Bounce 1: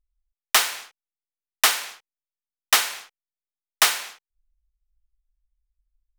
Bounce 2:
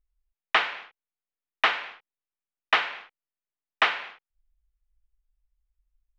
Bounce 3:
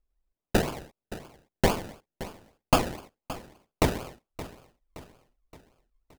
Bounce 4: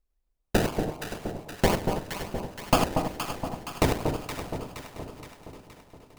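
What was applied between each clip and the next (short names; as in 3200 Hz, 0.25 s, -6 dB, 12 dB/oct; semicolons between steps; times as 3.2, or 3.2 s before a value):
LPF 2900 Hz 24 dB/oct
decimation with a swept rate 32×, swing 60% 3.9 Hz; feedback echo 0.571 s, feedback 47%, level -15.5 dB
regenerating reverse delay 0.121 s, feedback 40%, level -7 dB; echo with dull and thin repeats by turns 0.235 s, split 980 Hz, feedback 73%, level -5 dB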